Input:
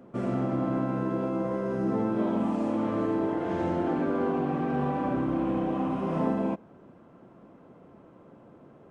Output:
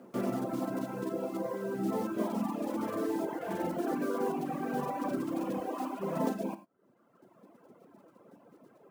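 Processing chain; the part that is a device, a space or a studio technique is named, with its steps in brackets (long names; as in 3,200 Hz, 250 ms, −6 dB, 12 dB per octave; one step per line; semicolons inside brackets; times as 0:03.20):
reverb reduction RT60 1.6 s
early digital voice recorder (band-pass filter 210–3,700 Hz; one scale factor per block 5 bits)
0:05.60–0:06.00: Butterworth high-pass 250 Hz
reverb reduction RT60 0.51 s
reverb whose tail is shaped and stops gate 120 ms flat, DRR 11 dB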